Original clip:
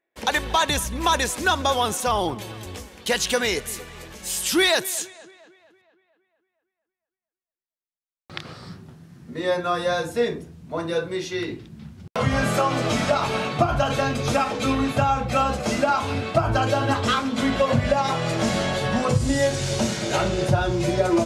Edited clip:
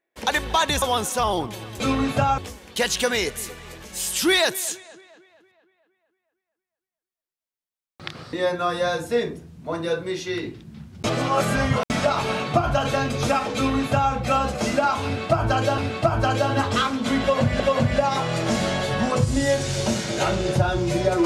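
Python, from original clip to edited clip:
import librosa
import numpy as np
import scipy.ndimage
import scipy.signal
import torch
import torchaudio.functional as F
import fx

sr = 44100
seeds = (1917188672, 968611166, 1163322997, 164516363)

y = fx.edit(x, sr, fx.cut(start_s=0.82, length_s=0.88),
    fx.cut(start_s=8.63, length_s=0.75),
    fx.reverse_span(start_s=12.09, length_s=0.86),
    fx.duplicate(start_s=14.6, length_s=0.58, to_s=2.68),
    fx.repeat(start_s=16.1, length_s=0.73, count=2),
    fx.repeat(start_s=17.53, length_s=0.39, count=2), tone=tone)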